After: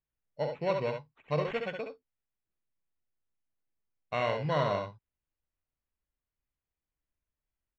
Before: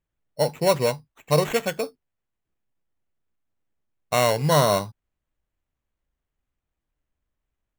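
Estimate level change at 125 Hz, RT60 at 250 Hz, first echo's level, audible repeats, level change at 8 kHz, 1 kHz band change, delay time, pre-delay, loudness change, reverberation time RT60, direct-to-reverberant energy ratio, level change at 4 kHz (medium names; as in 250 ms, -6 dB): -10.5 dB, no reverb, -5.5 dB, 1, under -30 dB, -9.5 dB, 68 ms, no reverb, -10.5 dB, no reverb, no reverb, -14.0 dB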